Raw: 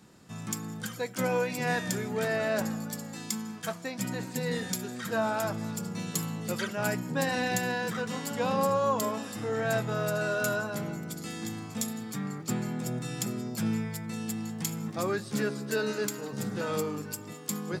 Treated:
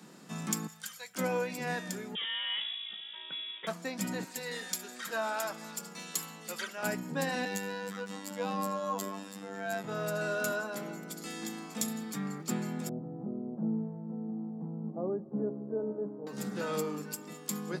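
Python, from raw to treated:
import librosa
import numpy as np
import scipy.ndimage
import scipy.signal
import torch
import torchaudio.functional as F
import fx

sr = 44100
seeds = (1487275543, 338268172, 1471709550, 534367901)

y = fx.tone_stack(x, sr, knobs='10-0-10', at=(0.67, 1.15))
y = fx.freq_invert(y, sr, carrier_hz=3600, at=(2.15, 3.67))
y = fx.highpass(y, sr, hz=1000.0, slope=6, at=(4.24, 6.83))
y = fx.robotise(y, sr, hz=98.1, at=(7.45, 9.84))
y = fx.highpass(y, sr, hz=230.0, slope=12, at=(10.51, 11.81))
y = fx.cheby2_lowpass(y, sr, hz=2600.0, order=4, stop_db=60, at=(12.89, 16.27))
y = fx.rider(y, sr, range_db=10, speed_s=2.0)
y = scipy.signal.sosfilt(scipy.signal.butter(8, 150.0, 'highpass', fs=sr, output='sos'), y)
y = F.gain(torch.from_numpy(y), -4.0).numpy()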